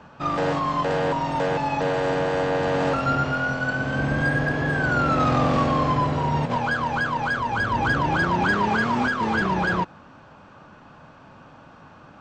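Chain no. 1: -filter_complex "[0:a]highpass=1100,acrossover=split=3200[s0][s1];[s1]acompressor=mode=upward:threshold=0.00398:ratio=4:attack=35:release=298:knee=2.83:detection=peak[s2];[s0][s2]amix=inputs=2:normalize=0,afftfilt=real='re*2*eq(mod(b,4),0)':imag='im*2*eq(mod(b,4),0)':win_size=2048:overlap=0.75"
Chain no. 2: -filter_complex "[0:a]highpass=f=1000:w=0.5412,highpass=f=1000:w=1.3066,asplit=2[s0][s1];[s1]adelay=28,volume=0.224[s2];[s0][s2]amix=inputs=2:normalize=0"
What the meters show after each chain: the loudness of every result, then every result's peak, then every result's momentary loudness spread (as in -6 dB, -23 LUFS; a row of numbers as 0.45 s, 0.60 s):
-28.0 LUFS, -26.5 LUFS; -14.0 dBFS, -13.5 dBFS; 10 LU, 7 LU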